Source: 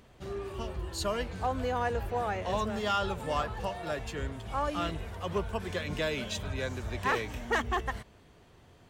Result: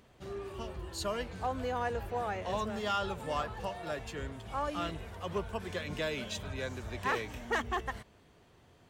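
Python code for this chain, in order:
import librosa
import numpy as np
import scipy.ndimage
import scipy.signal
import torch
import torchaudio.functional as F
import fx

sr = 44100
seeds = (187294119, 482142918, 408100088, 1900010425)

y = fx.low_shelf(x, sr, hz=63.0, db=-6.0)
y = y * librosa.db_to_amplitude(-3.0)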